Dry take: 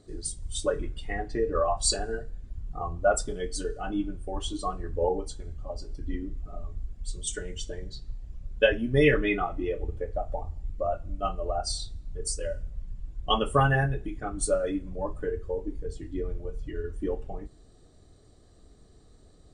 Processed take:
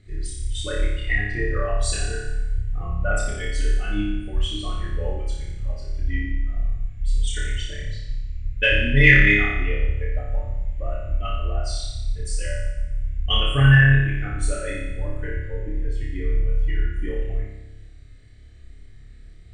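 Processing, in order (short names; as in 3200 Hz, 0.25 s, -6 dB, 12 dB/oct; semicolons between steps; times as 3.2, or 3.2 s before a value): EQ curve 110 Hz 0 dB, 170 Hz -9 dB, 1000 Hz -20 dB, 2100 Hz +6 dB, 4500 Hz -12 dB, 9900 Hz -15 dB; in parallel at -11 dB: soft clip -17 dBFS, distortion -23 dB; on the sum: flutter echo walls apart 5 m, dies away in 0.98 s; gain +5.5 dB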